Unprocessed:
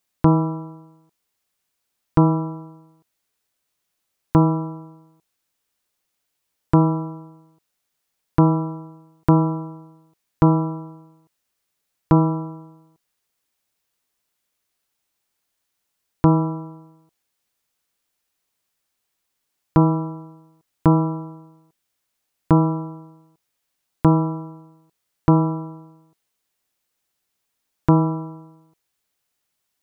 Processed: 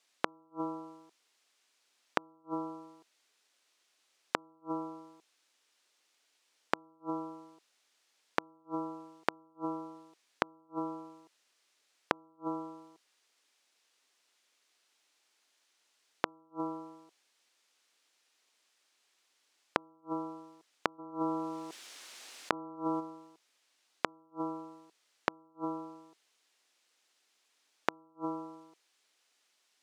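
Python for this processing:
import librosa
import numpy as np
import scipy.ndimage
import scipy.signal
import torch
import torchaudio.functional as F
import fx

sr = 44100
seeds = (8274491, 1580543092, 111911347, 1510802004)

y = scipy.signal.sosfilt(scipy.signal.butter(4, 270.0, 'highpass', fs=sr, output='sos'), x)
y = fx.high_shelf(y, sr, hz=2000.0, db=9.0)
y = fx.gate_flip(y, sr, shuts_db=-18.0, range_db=-42)
y = fx.air_absorb(y, sr, metres=80.0)
y = fx.env_flatten(y, sr, amount_pct=50, at=(20.98, 22.99), fade=0.02)
y = y * 10.0 ** (2.5 / 20.0)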